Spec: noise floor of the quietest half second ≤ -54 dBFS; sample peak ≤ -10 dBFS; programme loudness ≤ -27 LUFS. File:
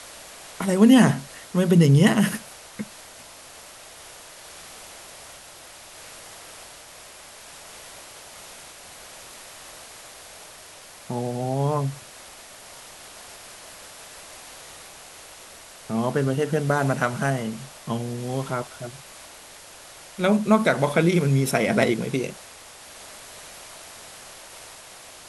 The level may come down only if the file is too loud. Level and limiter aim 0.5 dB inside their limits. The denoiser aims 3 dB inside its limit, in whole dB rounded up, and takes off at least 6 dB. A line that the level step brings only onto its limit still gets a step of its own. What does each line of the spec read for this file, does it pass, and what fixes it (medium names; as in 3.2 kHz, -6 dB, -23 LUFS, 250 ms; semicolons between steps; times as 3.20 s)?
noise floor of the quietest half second -45 dBFS: fail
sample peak -5.5 dBFS: fail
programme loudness -22.0 LUFS: fail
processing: noise reduction 7 dB, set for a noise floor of -45 dBFS; trim -5.5 dB